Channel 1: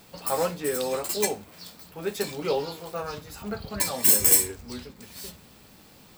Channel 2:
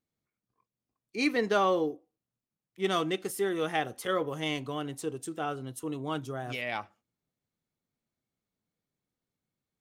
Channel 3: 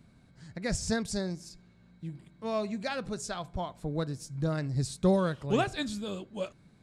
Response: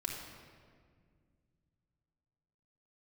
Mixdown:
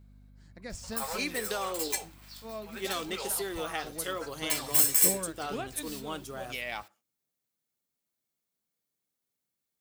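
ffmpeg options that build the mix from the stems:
-filter_complex "[0:a]highpass=1k,adelay=700,volume=-4.5dB[a];[1:a]lowshelf=f=190:g=-11.5,acompressor=threshold=-29dB:ratio=6,crystalizer=i=2:c=0,volume=-2.5dB[b];[2:a]equalizer=f=150:t=o:w=0.4:g=-13.5,aeval=exprs='val(0)+0.00562*(sin(2*PI*50*n/s)+sin(2*PI*2*50*n/s)/2+sin(2*PI*3*50*n/s)/3+sin(2*PI*4*50*n/s)/4+sin(2*PI*5*50*n/s)/5)':c=same,volume=-9dB[c];[a][b][c]amix=inputs=3:normalize=0"

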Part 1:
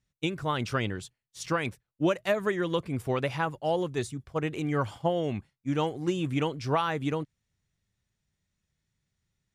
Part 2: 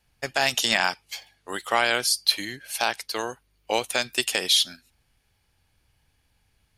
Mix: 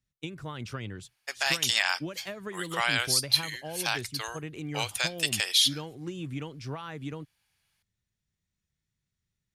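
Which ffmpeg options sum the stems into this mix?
-filter_complex "[0:a]acrossover=split=130[a][b];[b]acompressor=threshold=-28dB:ratio=6[c];[a][c]amix=inputs=2:normalize=0,volume=-4dB[d];[1:a]highpass=770,adelay=1050,volume=-2dB[e];[d][e]amix=inputs=2:normalize=0,equalizer=f=710:t=o:w=1.8:g=-4.5"

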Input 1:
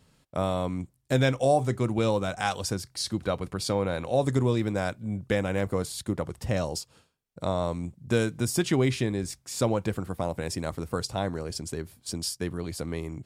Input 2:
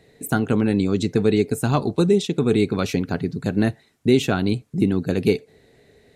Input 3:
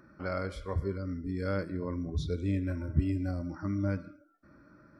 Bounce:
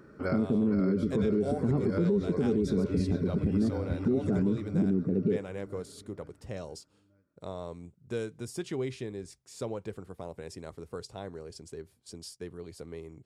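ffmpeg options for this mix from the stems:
-filter_complex "[0:a]lowpass=11k,volume=-13dB,asplit=2[a][b];[1:a]bandpass=f=200:t=q:w=1.8:csg=0,volume=0dB[c];[2:a]volume=1.5dB,asplit=2[d][e];[e]volume=-4.5dB[f];[b]apad=whole_len=220335[g];[d][g]sidechaincompress=threshold=-46dB:ratio=8:attack=16:release=592[h];[f]aecho=0:1:466|932|1398|1864|2330|2796|3262:1|0.51|0.26|0.133|0.0677|0.0345|0.0176[i];[a][c][h][i]amix=inputs=4:normalize=0,equalizer=f=420:t=o:w=0.43:g=8.5,alimiter=limit=-19dB:level=0:latency=1:release=73"

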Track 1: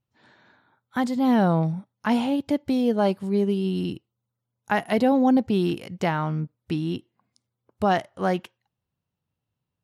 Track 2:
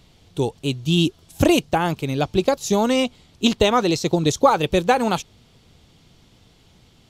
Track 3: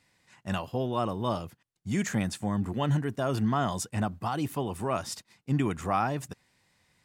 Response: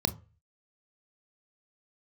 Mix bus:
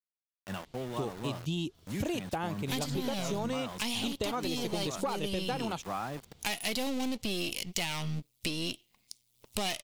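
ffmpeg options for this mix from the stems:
-filter_complex "[0:a]aeval=exprs='if(lt(val(0),0),0.251*val(0),val(0))':c=same,aexciter=amount=7.9:drive=6.6:freq=2.3k,adelay=1750,volume=0dB[a];[1:a]adelay=600,volume=-9dB[b];[2:a]highpass=f=98:w=0.5412,highpass=f=98:w=1.3066,aeval=exprs='val(0)*gte(abs(val(0)),0.0211)':c=same,volume=-7dB,asplit=2[c][d];[d]apad=whole_len=510803[e];[a][e]sidechaincompress=threshold=-36dB:ratio=8:attack=16:release=1000[f];[f][b][c]amix=inputs=3:normalize=0,acompressor=mode=upward:threshold=-45dB:ratio=2.5,asoftclip=type=tanh:threshold=-15.5dB,acompressor=threshold=-30dB:ratio=6"

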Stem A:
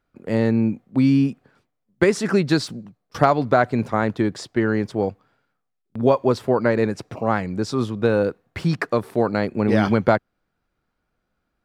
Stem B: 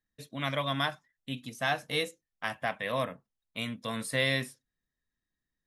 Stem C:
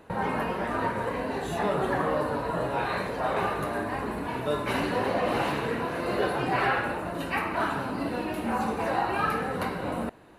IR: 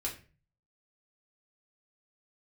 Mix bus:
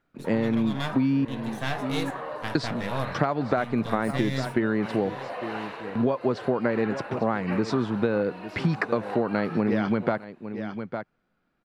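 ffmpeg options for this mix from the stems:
-filter_complex "[0:a]lowpass=2.3k,equalizer=f=71:t=o:w=1.9:g=-14,crystalizer=i=5:c=0,volume=-1dB,asplit=3[a][b][c];[a]atrim=end=1.25,asetpts=PTS-STARTPTS,afade=t=out:st=1.246:d=0.004:c=hsin[d];[b]atrim=start=1.25:end=2.55,asetpts=PTS-STARTPTS,volume=0[e];[c]atrim=start=2.55,asetpts=PTS-STARTPTS,afade=t=in:d=0.004:c=hsin[f];[d][e][f]concat=n=3:v=0:a=1,asplit=2[g][h];[h]volume=-17.5dB[i];[1:a]aeval=exprs='if(lt(val(0),0),0.251*val(0),val(0))':c=same,volume=-1.5dB,asplit=3[j][k][l];[k]volume=-10.5dB[m];[l]volume=-17dB[n];[2:a]acrossover=split=470 6400:gain=0.0708 1 0.224[o][p][q];[o][p][q]amix=inputs=3:normalize=0,adelay=150,volume=-7dB[r];[3:a]atrim=start_sample=2205[s];[m][s]afir=irnorm=-1:irlink=0[t];[i][n]amix=inputs=2:normalize=0,aecho=0:1:854:1[u];[g][j][r][t][u]amix=inputs=5:normalize=0,equalizer=f=140:w=0.51:g=9.5,acompressor=threshold=-20dB:ratio=10"

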